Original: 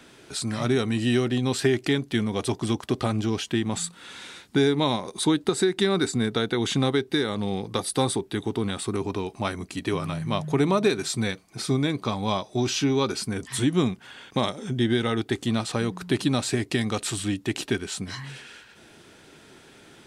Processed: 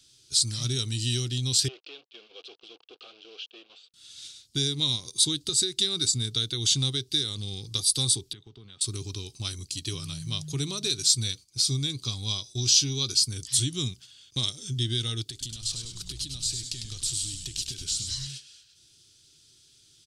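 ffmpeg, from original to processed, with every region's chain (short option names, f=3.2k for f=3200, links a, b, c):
-filter_complex "[0:a]asettb=1/sr,asplit=3[a][b][c];[a]atrim=end=1.684[d];[b]atrim=start=1.68:end=3.94,asetpts=PTS-STARTPTS,afade=t=in:d=0.004:c=qsin,afade=t=out:st=2.256:d=0.004:c=qsin,acrusher=bits=5:mix=0:aa=0.5,aeval=exprs='(tanh(15.8*val(0)+0.4)-tanh(0.4))/15.8':c=same,highpass=f=450:w=0.5412,highpass=f=450:w=1.3066,equalizer=f=480:t=q:w=4:g=7,equalizer=f=720:t=q:w=4:g=3,equalizer=f=1k:t=q:w=4:g=-5,equalizer=f=1.9k:t=q:w=4:g=-10,equalizer=f=2.7k:t=q:w=4:g=5,lowpass=f=2.8k:w=0.5412,lowpass=f=2.8k:w=1.3066[e];[c]atrim=start=3.936[f];[d][e]acrossfade=d=0.004:c1=hsin:c2=qsin[g];[g][f]acrossfade=d=0.004:c1=qsin:c2=hsin,asettb=1/sr,asplit=3[h][i][j];[h]atrim=end=8.334[k];[i]atrim=start=8.33:end=8.81,asetpts=PTS-STARTPTS,afade=t=in:d=0.004:c=qsin,afade=t=out:st=0.476:d=0.004:c=qsin,equalizer=f=300:w=2.4:g=-8,acompressor=threshold=-32dB:ratio=4:attack=3.2:release=140:knee=1:detection=peak,highpass=180,lowpass=2.1k[l];[j]atrim=start=8.806[m];[k][l]acrossfade=d=0.004:c1=hsin:c2=qsin[n];[n][m]acrossfade=d=0.004:c1=qsin:c2=hsin,asettb=1/sr,asplit=3[o][p][q];[o]atrim=end=15.254[r];[p]atrim=start=15.25:end=18.27,asetpts=PTS-STARTPTS,afade=t=in:d=0.004:c=qsin,afade=t=out:st=3.016:d=0.004:c=qsin,acompressor=threshold=-32dB:ratio=12:attack=3.2:release=140:knee=1:detection=peak,asplit=8[s][t][u][v][w][x][y][z];[t]adelay=101,afreqshift=-120,volume=-6dB[aa];[u]adelay=202,afreqshift=-240,volume=-10.9dB[ab];[v]adelay=303,afreqshift=-360,volume=-15.8dB[ac];[w]adelay=404,afreqshift=-480,volume=-20.6dB[ad];[x]adelay=505,afreqshift=-600,volume=-25.5dB[ae];[y]adelay=606,afreqshift=-720,volume=-30.4dB[af];[z]adelay=707,afreqshift=-840,volume=-35.3dB[ag];[s][aa][ab][ac][ad][ae][af][ag]amix=inputs=8:normalize=0,atrim=end_sample=133182[ah];[q]atrim=start=18.266[ai];[r][ah]acrossfade=d=0.004:c1=hsin:c2=qsin[aj];[aj][ai]acrossfade=d=0.004:c1=qsin:c2=hsin,bandreject=f=910:w=12,agate=range=-9dB:threshold=-40dB:ratio=16:detection=peak,firequalizer=gain_entry='entry(130,0);entry(190,-16);entry(330,-12);entry(600,-23);entry(1300,-16);entry(1900,-16);entry(3100,2);entry(4700,12);entry(13000,3)':delay=0.05:min_phase=1"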